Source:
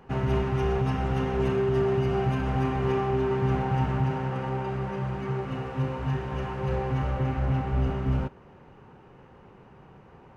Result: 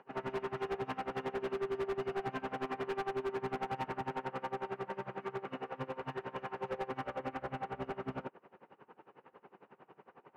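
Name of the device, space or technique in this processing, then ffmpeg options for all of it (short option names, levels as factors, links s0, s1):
helicopter radio: -af "highpass=340,lowpass=2800,aeval=exprs='val(0)*pow(10,-23*(0.5-0.5*cos(2*PI*11*n/s))/20)':c=same,asoftclip=type=hard:threshold=0.0224,volume=1.12"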